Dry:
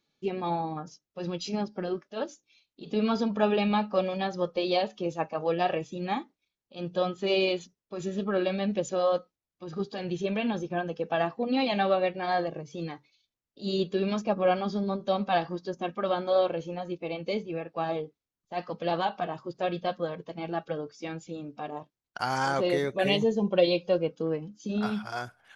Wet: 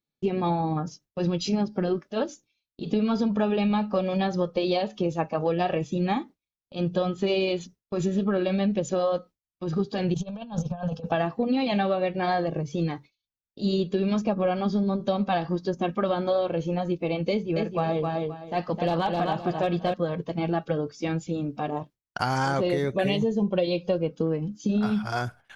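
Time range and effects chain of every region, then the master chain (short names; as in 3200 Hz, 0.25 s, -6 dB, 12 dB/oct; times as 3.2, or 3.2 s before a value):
10.14–11.12 negative-ratio compressor -35 dBFS, ratio -0.5 + fixed phaser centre 840 Hz, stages 4 + Doppler distortion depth 0.1 ms
17.3–19.94 hard clip -19 dBFS + feedback echo 0.261 s, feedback 22%, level -5 dB
whole clip: gate with hold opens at -49 dBFS; low shelf 220 Hz +11 dB; compressor, threshold -27 dBFS; gain +5.5 dB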